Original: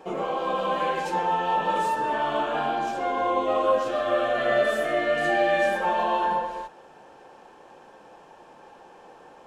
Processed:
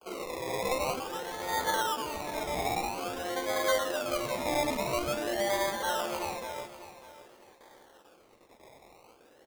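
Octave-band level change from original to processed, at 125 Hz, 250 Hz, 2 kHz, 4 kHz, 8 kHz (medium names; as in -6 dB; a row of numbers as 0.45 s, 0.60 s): -2.0 dB, -5.0 dB, -7.0 dB, 0.0 dB, no reading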